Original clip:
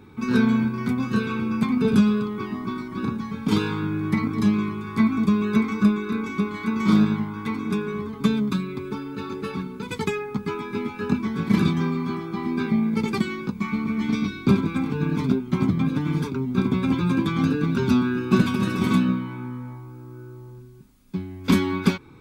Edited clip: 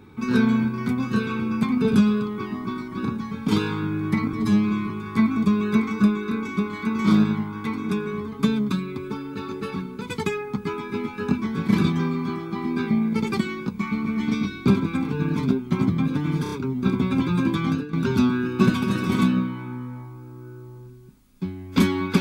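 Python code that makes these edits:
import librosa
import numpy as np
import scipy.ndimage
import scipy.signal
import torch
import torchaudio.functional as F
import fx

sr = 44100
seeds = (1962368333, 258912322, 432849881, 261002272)

y = fx.edit(x, sr, fx.stretch_span(start_s=4.33, length_s=0.38, factor=1.5),
    fx.stutter(start_s=16.24, slice_s=0.03, count=4),
    fx.fade_out_to(start_s=17.37, length_s=0.28, floor_db=-17.0), tone=tone)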